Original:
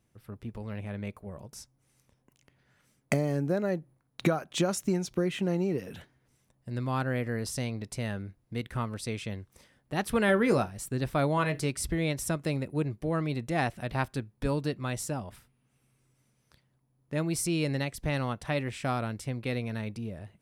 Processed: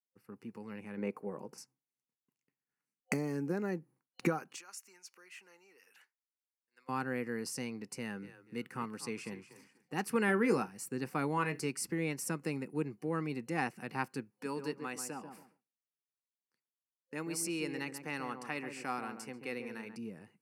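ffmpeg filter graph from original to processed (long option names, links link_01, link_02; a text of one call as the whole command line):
ffmpeg -i in.wav -filter_complex "[0:a]asettb=1/sr,asplit=3[link_01][link_02][link_03];[link_01]atrim=end=0.974[link_04];[link_02]atrim=start=0.97:end=1.58,asetpts=PTS-STARTPTS,afade=type=in:duration=0.004:curve=qsin,afade=type=out:start_time=0.606:duration=0.004:curve=qsin,acrossover=split=4300[link_05][link_06];[link_06]acompressor=threshold=-60dB:ratio=4:attack=1:release=60[link_07];[link_05][link_07]amix=inputs=2:normalize=0,equalizer=frequency=520:width_type=o:width=2.6:gain=11[link_08];[link_03]atrim=start=1.576[link_09];[link_04][link_08]acrossfade=duration=0.004:curve1=hsin:curve2=qsin[link_10];[link_10][link_09]acrossfade=duration=0.004:curve1=qsin:curve2=hsin,asettb=1/sr,asplit=3[link_11][link_12][link_13];[link_11]atrim=end=4.564[link_14];[link_12]atrim=start=4.56:end=6.89,asetpts=PTS-STARTPTS,afade=type=in:duration=0.004:curve=qsin,afade=type=out:start_time=2.326:duration=0.004:curve=qsin,acompressor=threshold=-52dB:ratio=1.5:attack=3.2:release=140:knee=1:detection=peak,highpass=1200[link_15];[link_13]atrim=start=6.886[link_16];[link_14][link_15]acrossfade=duration=0.004:curve1=hsin:curve2=qsin[link_17];[link_17][link_16]acrossfade=duration=0.004:curve1=qsin:curve2=hsin,asettb=1/sr,asplit=3[link_18][link_19][link_20];[link_18]atrim=end=7.984[link_21];[link_19]atrim=start=7.98:end=10.09,asetpts=PTS-STARTPTS,afade=type=in:duration=0.004:curve=qsin,afade=type=out:start_time=2.106:duration=0.004:curve=qsin,aeval=exprs='0.1*(abs(mod(val(0)/0.1+3,4)-2)-1)':channel_layout=same,asplit=5[link_22][link_23][link_24][link_25][link_26];[link_23]adelay=241,afreqshift=-85,volume=-13.5dB[link_27];[link_24]adelay=482,afreqshift=-170,volume=-22.1dB[link_28];[link_25]adelay=723,afreqshift=-255,volume=-30.8dB[link_29];[link_26]adelay=964,afreqshift=-340,volume=-39.4dB[link_30];[link_22][link_27][link_28][link_29][link_30]amix=inputs=5:normalize=0,atrim=end_sample=93051[link_31];[link_20]atrim=start=10.086[link_32];[link_21][link_31]acrossfade=duration=0.004:curve1=hsin:curve2=qsin[link_33];[link_33][link_32]acrossfade=duration=0.004:curve1=qsin:curve2=hsin,asettb=1/sr,asplit=3[link_34][link_35][link_36];[link_34]atrim=end=14.304[link_37];[link_35]atrim=start=14.3:end=19.96,asetpts=PTS-STARTPTS,afade=type=in:duration=0.004:curve=qsin,afade=type=out:start_time=5.656:duration=0.004:curve=qsin,highpass=frequency=370:poles=1,asplit=2[link_38][link_39];[link_39]adelay=138,lowpass=frequency=1000:poles=1,volume=-6dB,asplit=2[link_40][link_41];[link_41]adelay=138,lowpass=frequency=1000:poles=1,volume=0.28,asplit=2[link_42][link_43];[link_43]adelay=138,lowpass=frequency=1000:poles=1,volume=0.28,asplit=2[link_44][link_45];[link_45]adelay=138,lowpass=frequency=1000:poles=1,volume=0.28[link_46];[link_38][link_40][link_42][link_44][link_46]amix=inputs=5:normalize=0,atrim=end_sample=249606[link_47];[link_36]atrim=start=19.956[link_48];[link_37][link_47]acrossfade=duration=0.004:curve1=hsin:curve2=qsin[link_49];[link_49][link_48]acrossfade=duration=0.004:curve1=qsin:curve2=hsin,highpass=frequency=170:width=0.5412,highpass=frequency=170:width=1.3066,agate=range=-33dB:threshold=-55dB:ratio=3:detection=peak,superequalizer=8b=0.282:13b=0.251,volume=-4dB" out.wav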